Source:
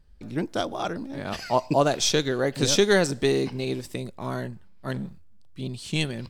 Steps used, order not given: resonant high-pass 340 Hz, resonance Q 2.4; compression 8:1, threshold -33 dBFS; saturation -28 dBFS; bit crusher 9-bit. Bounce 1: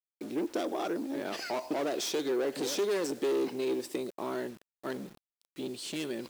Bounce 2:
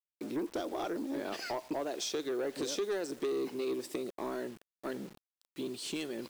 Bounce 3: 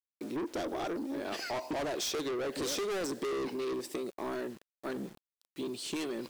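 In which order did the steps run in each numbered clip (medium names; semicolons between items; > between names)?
saturation > compression > resonant high-pass > bit crusher; compression > resonant high-pass > bit crusher > saturation; resonant high-pass > bit crusher > saturation > compression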